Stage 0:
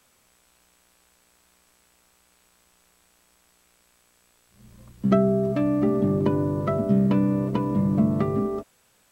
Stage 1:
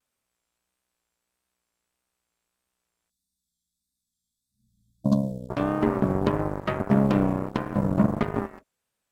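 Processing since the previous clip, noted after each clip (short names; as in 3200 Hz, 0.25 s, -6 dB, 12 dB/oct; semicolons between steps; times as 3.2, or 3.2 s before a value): spectral delete 3.09–5.5, 300–3300 Hz; vibrato 1.6 Hz 81 cents; added harmonics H 7 -16 dB, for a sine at -9 dBFS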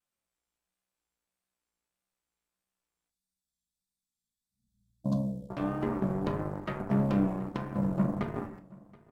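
echo 0.726 s -23 dB; shoebox room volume 320 m³, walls furnished, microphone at 0.8 m; gain -9 dB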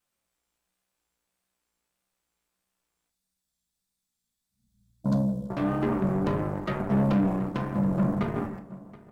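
soft clip -25 dBFS, distortion -13 dB; tape echo 0.165 s, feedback 69%, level -17 dB, low-pass 1600 Hz; gain +7 dB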